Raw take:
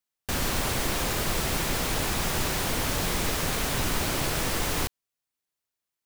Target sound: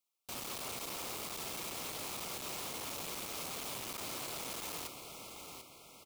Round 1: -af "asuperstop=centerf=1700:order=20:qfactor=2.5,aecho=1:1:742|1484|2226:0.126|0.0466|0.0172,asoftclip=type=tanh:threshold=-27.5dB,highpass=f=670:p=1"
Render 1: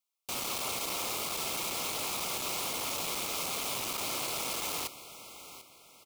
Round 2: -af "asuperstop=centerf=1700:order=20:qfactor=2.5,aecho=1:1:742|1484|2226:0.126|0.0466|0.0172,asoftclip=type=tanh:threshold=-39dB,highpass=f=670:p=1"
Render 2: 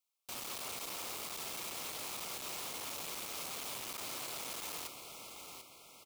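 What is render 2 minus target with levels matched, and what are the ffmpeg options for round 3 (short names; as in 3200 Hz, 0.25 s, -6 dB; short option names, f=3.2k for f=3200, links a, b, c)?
250 Hz band -4.0 dB
-af "asuperstop=centerf=1700:order=20:qfactor=2.5,aecho=1:1:742|1484|2226:0.126|0.0466|0.0172,asoftclip=type=tanh:threshold=-39dB,highpass=f=330:p=1"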